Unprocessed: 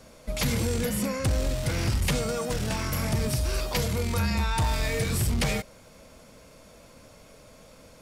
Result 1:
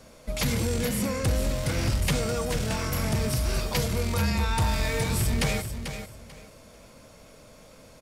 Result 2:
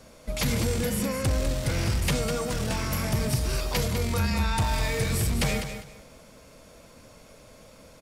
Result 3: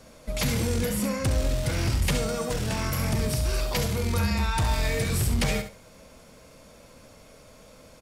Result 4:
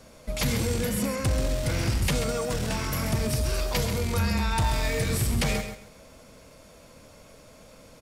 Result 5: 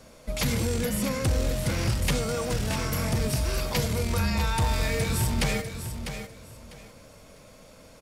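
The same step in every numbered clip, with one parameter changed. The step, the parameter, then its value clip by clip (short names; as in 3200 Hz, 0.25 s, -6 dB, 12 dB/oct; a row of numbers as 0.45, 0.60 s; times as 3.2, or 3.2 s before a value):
feedback echo, time: 441, 201, 68, 134, 649 ms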